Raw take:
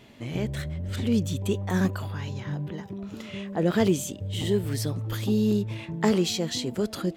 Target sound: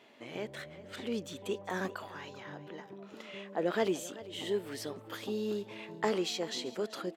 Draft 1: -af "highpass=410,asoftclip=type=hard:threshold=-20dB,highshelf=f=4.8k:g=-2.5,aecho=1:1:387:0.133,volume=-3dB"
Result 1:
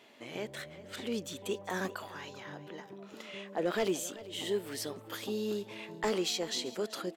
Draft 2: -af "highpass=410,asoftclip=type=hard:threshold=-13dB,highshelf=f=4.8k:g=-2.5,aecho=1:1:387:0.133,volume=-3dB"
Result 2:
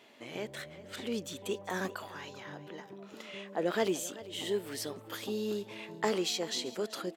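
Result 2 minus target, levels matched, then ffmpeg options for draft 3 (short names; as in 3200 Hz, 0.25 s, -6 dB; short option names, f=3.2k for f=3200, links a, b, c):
8000 Hz band +4.5 dB
-af "highpass=410,asoftclip=type=hard:threshold=-13dB,highshelf=f=4.8k:g=-10,aecho=1:1:387:0.133,volume=-3dB"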